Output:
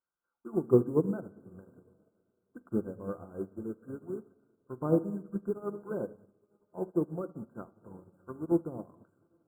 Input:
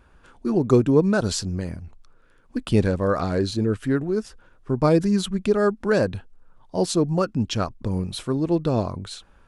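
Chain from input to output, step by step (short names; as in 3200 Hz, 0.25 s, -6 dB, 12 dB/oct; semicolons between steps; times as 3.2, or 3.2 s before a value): HPF 440 Hz 6 dB/oct; treble ducked by the level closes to 610 Hz, closed at -23.5 dBFS; resonant high shelf 2400 Hz -12.5 dB, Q 1.5; on a send: diffused feedback echo 0.931 s, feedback 43%, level -16 dB; on the sum: dynamic EQ 590 Hz, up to -5 dB, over -37 dBFS, Q 1.4; in parallel at -10 dB: bit-crush 7-bit; on the sum: brick-wall FIR band-stop 1600–7000 Hz; shoebox room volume 1100 m³, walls mixed, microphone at 0.83 m; upward expander 2.5:1, over -40 dBFS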